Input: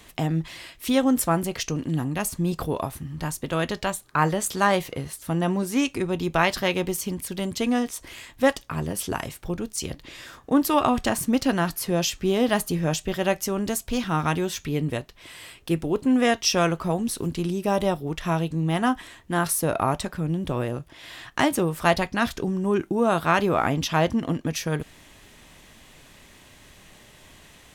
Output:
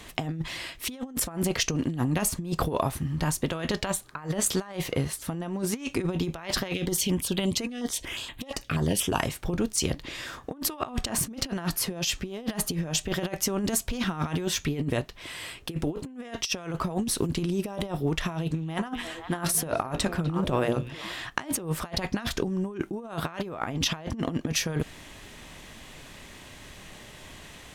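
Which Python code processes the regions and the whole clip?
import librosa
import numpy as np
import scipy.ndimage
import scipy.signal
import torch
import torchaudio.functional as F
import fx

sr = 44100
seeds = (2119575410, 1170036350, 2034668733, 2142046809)

y = fx.chain(x, sr, fx.peak_eq(hz=3200.0, db=9.0, octaves=0.97),
    fx.filter_held_notch(hz=8.4, low_hz=960.0, high_hz=5500.0), at=(6.74, 9.19))
y = fx.chain(y, sr, fx.hum_notches(base_hz=60, count=9),
    fx.echo_stepped(ms=249, hz=3200.0, octaves=-1.4, feedback_pct=70, wet_db=-10.0), at=(18.29, 21.14))
y = fx.high_shelf(y, sr, hz=11000.0, db=-6.5)
y = fx.over_compress(y, sr, threshold_db=-28.0, ratio=-0.5)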